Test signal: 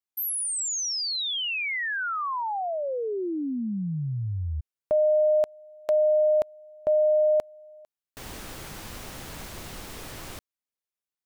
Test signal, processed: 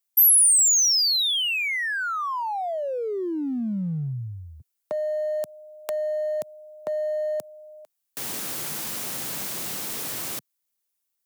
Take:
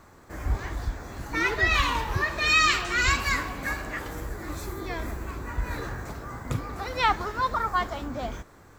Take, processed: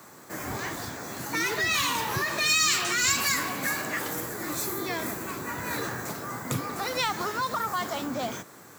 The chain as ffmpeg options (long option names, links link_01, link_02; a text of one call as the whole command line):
ffmpeg -i in.wav -filter_complex "[0:a]acrossover=split=210|4900[link_01][link_02][link_03];[link_02]acompressor=threshold=-29dB:ratio=5:attack=3.7:release=136:knee=2.83:detection=peak[link_04];[link_01][link_04][link_03]amix=inputs=3:normalize=0,highpass=frequency=130:width=0.5412,highpass=frequency=130:width=1.3066,asplit=2[link_05][link_06];[link_06]volume=29.5dB,asoftclip=hard,volume=-29.5dB,volume=-7.5dB[link_07];[link_05][link_07]amix=inputs=2:normalize=0,crystalizer=i=2:c=0" out.wav